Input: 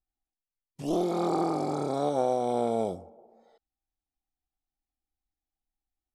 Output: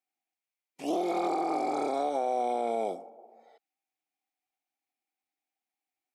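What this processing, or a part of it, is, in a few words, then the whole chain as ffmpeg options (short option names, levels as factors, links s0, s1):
laptop speaker: -af "highpass=f=250:w=0.5412,highpass=f=250:w=1.3066,equalizer=f=740:t=o:w=0.34:g=7,equalizer=f=2300:t=o:w=0.49:g=11,alimiter=limit=0.1:level=0:latency=1:release=111"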